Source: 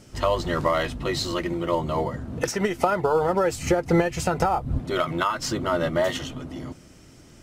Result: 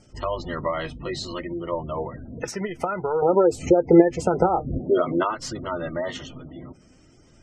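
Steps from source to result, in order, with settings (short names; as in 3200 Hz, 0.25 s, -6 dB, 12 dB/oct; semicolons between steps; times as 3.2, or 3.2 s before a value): 3.22–5.35 bell 390 Hz +12 dB 2 oct; spectral gate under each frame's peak -25 dB strong; flange 0.54 Hz, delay 1.2 ms, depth 5.4 ms, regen +68%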